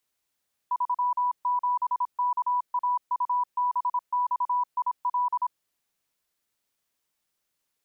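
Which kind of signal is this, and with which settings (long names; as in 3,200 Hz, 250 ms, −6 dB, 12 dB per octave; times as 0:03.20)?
Morse code "37KAUBXIL" 26 words per minute 986 Hz −22 dBFS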